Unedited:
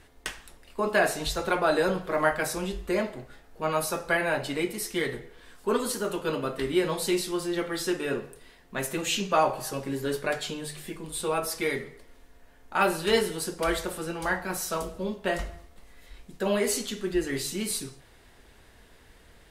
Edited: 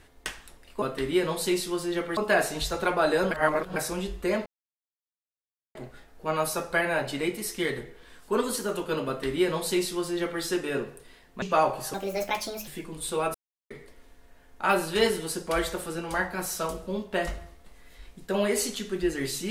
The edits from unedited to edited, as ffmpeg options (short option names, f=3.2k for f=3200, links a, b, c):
-filter_complex "[0:a]asplit=11[a][b][c][d][e][f][g][h][i][j][k];[a]atrim=end=0.822[l];[b]atrim=start=6.428:end=7.782[m];[c]atrim=start=0.818:end=1.962[n];[d]atrim=start=1.958:end=2.412,asetpts=PTS-STARTPTS,areverse[o];[e]atrim=start=2.408:end=3.11,asetpts=PTS-STARTPTS,afade=t=out:st=0.698:d=0.004:c=hsin,apad=pad_dur=1.29[p];[f]atrim=start=3.11:end=8.782,asetpts=PTS-STARTPTS,afade=t=in:d=0.004:c=hsin[q];[g]atrim=start=9.218:end=9.744[r];[h]atrim=start=9.74:end=10.79,asetpts=PTS-STARTPTS,asetrate=63063,aresample=44100,atrim=end_sample=32381,asetpts=PTS-STARTPTS[s];[i]atrim=start=10.786:end=11.46,asetpts=PTS-STARTPTS,afade=t=out:st=0.67:d=0.004:c=hsin[t];[j]atrim=start=11.46:end=11.82,asetpts=PTS-STARTPTS,volume=0[u];[k]atrim=start=11.82,asetpts=PTS-STARTPTS,afade=t=in:d=0.004:c=hsin[v];[l][m]acrossfade=d=0.004:c1=hsin:c2=hsin[w];[w][n]acrossfade=d=0.004:c1=hsin:c2=hsin[x];[x][o]acrossfade=d=0.004:c1=hsin:c2=hsin[y];[p][q]concat=n=2:v=0:a=1[z];[y][z]acrossfade=d=0.004:c1=hsin:c2=hsin[aa];[aa][r]acrossfade=d=0.004:c1=hsin:c2=hsin[ab];[ab][s]acrossfade=d=0.004:c1=hsin:c2=hsin[ac];[t][u][v]concat=n=3:v=0:a=1[ad];[ac][ad]acrossfade=d=0.004:c1=hsin:c2=hsin"